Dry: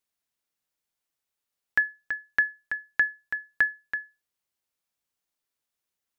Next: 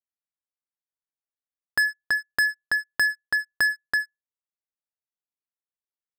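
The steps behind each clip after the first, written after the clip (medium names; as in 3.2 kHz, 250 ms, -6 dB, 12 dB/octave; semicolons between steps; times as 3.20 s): Chebyshev low-pass 2 kHz, order 8; waveshaping leveller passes 5; trim -5 dB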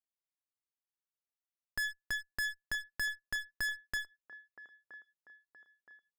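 one-sided clip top -38.5 dBFS, bottom -20 dBFS; feedback echo behind a band-pass 971 ms, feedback 46%, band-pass 670 Hz, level -10.5 dB; trim -7.5 dB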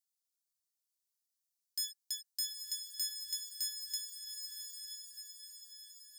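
inverse Chebyshev high-pass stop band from 1 kHz, stop band 70 dB; echo that smears into a reverb 901 ms, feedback 50%, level -5 dB; trim +8 dB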